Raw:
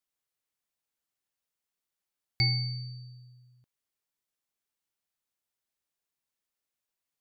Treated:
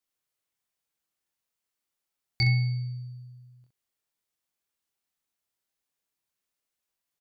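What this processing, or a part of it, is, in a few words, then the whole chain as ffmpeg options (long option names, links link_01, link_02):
slapback doubling: -filter_complex "[0:a]asplit=3[link_01][link_02][link_03];[link_02]adelay=25,volume=-3.5dB[link_04];[link_03]adelay=65,volume=-6dB[link_05];[link_01][link_04][link_05]amix=inputs=3:normalize=0"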